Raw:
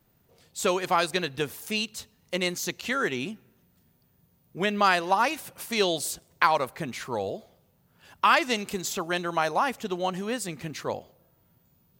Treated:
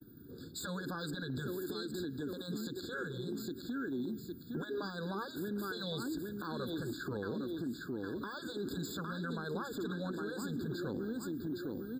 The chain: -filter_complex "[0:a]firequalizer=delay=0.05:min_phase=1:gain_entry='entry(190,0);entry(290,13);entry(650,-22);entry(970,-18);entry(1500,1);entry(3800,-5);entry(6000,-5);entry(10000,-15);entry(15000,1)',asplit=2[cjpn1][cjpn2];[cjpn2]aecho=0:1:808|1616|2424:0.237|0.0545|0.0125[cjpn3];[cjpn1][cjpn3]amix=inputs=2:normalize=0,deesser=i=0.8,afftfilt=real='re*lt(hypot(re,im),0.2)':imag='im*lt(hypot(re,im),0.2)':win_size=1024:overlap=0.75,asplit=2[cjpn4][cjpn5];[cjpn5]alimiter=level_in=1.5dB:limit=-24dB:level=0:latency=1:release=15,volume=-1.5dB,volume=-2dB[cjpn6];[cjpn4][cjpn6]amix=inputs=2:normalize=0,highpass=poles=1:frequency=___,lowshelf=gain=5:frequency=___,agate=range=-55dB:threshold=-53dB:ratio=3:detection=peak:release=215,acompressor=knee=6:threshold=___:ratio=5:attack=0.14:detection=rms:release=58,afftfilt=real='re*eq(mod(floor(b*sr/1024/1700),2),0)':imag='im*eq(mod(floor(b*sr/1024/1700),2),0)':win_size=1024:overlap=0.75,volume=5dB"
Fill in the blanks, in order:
110, 460, -39dB